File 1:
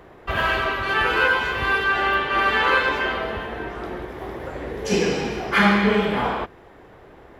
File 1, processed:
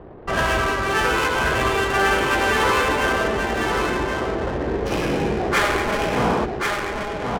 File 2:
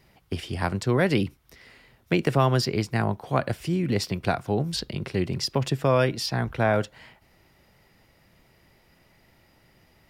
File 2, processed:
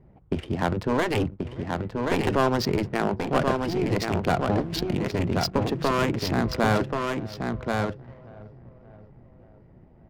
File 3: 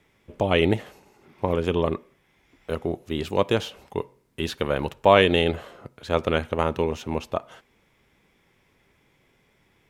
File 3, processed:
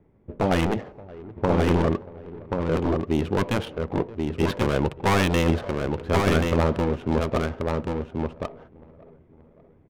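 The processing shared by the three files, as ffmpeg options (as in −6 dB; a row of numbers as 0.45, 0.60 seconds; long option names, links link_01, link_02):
-filter_complex "[0:a]tiltshelf=frequency=810:gain=3.5,asoftclip=type=tanh:threshold=-16dB,asplit=2[link_01][link_02];[link_02]aecho=0:1:574|1148|1722|2296:0.0708|0.0411|0.0238|0.0138[link_03];[link_01][link_03]amix=inputs=2:normalize=0,afftfilt=real='re*lt(hypot(re,im),0.447)':imag='im*lt(hypot(re,im),0.447)':win_size=1024:overlap=0.75,asplit=2[link_04][link_05];[link_05]aecho=0:1:1082:0.631[link_06];[link_04][link_06]amix=inputs=2:normalize=0,adynamicsmooth=sensitivity=7.5:basefreq=760,volume=4.5dB"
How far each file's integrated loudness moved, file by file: 0.0, −0.5, 0.0 LU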